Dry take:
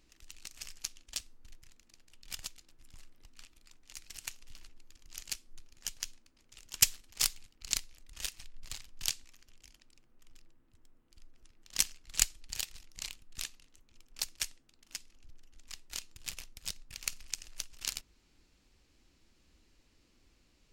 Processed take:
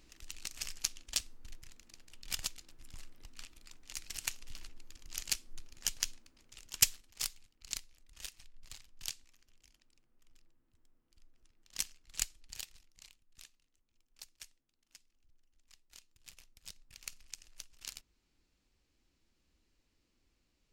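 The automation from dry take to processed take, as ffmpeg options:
ffmpeg -i in.wav -af "volume=11.5dB,afade=type=out:start_time=6.04:duration=1.17:silence=0.251189,afade=type=out:start_time=12.63:duration=0.4:silence=0.375837,afade=type=in:start_time=16.12:duration=0.82:silence=0.446684" out.wav

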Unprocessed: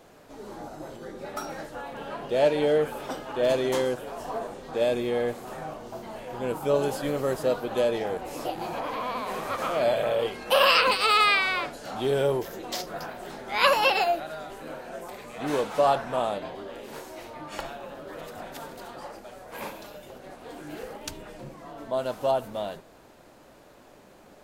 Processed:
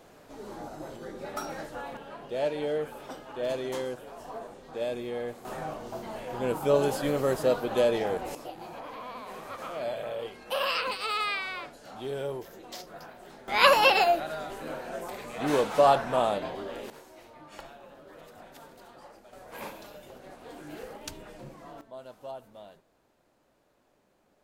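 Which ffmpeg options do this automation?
ffmpeg -i in.wav -af "asetnsamples=nb_out_samples=441:pad=0,asendcmd='1.97 volume volume -7.5dB;5.45 volume volume 0.5dB;8.35 volume volume -9.5dB;13.48 volume volume 1.5dB;16.9 volume volume -10dB;19.33 volume volume -3.5dB;21.81 volume volume -16dB',volume=-1dB" out.wav

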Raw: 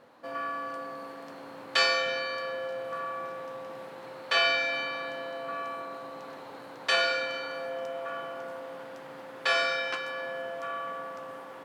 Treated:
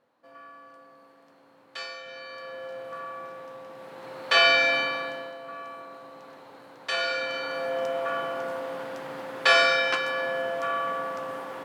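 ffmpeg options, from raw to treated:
ffmpeg -i in.wav -af "volume=18.5dB,afade=type=in:start_time=2.03:duration=0.72:silence=0.281838,afade=type=in:start_time=3.76:duration=0.92:silence=0.316228,afade=type=out:start_time=4.68:duration=0.69:silence=0.266073,afade=type=in:start_time=6.92:duration=0.91:silence=0.281838" out.wav

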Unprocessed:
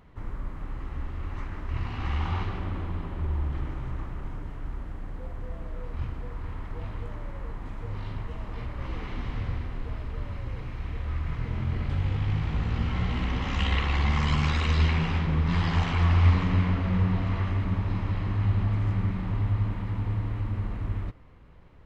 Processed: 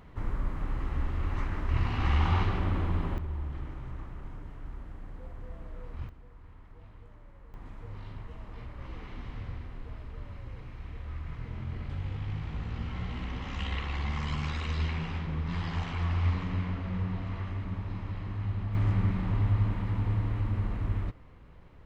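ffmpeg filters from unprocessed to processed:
ffmpeg -i in.wav -af "asetnsamples=nb_out_samples=441:pad=0,asendcmd='3.18 volume volume -6.5dB;6.09 volume volume -16dB;7.54 volume volume -8dB;18.75 volume volume 0dB',volume=3dB" out.wav

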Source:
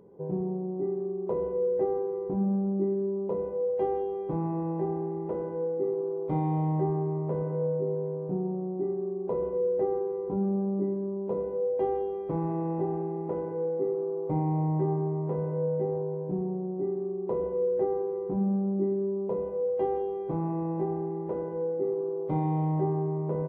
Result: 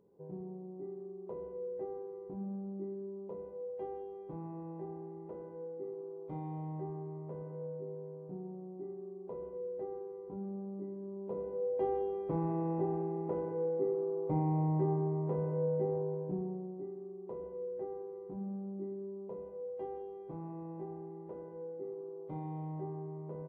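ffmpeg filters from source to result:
ffmpeg -i in.wav -af "volume=-4dB,afade=type=in:start_time=10.9:duration=1.19:silence=0.334965,afade=type=out:start_time=16.09:duration=0.8:silence=0.334965" out.wav

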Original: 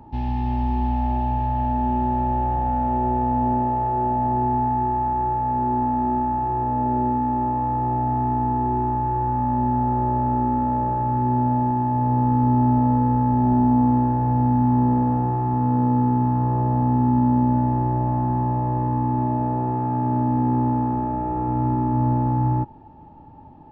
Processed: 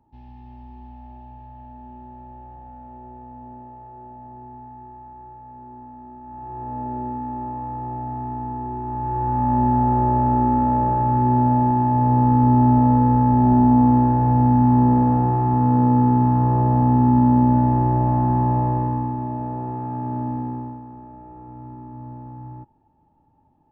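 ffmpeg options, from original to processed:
ffmpeg -i in.wav -af "volume=3dB,afade=type=in:start_time=6.21:duration=0.55:silence=0.251189,afade=type=in:start_time=8.83:duration=0.73:silence=0.316228,afade=type=out:start_time=18.6:duration=0.57:silence=0.398107,afade=type=out:start_time=20.28:duration=0.53:silence=0.266073" out.wav

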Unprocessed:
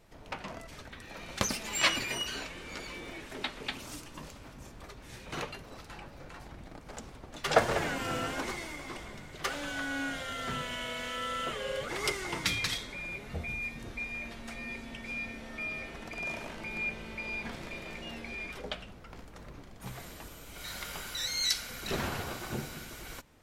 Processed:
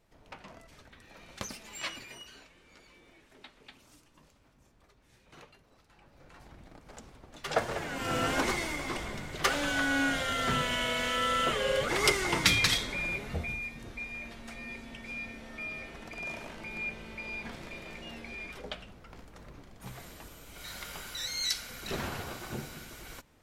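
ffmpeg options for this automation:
ffmpeg -i in.wav -af "volume=14.5dB,afade=type=out:start_time=1.23:duration=1.25:silence=0.398107,afade=type=in:start_time=5.95:duration=0.54:silence=0.281838,afade=type=in:start_time=7.88:duration=0.49:silence=0.266073,afade=type=out:start_time=13.04:duration=0.62:silence=0.375837" out.wav

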